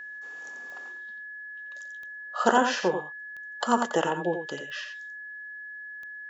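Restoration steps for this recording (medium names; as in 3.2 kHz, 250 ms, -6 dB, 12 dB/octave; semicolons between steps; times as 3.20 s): de-click; band-stop 1.7 kHz, Q 30; inverse comb 88 ms -7.5 dB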